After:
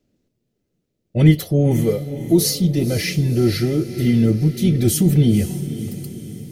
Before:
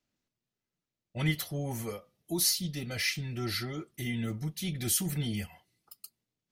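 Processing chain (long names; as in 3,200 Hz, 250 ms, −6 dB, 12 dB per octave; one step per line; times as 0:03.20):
low shelf with overshoot 680 Hz +11.5 dB, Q 1.5
feedback delay with all-pass diffusion 521 ms, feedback 50%, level −12 dB
level +6 dB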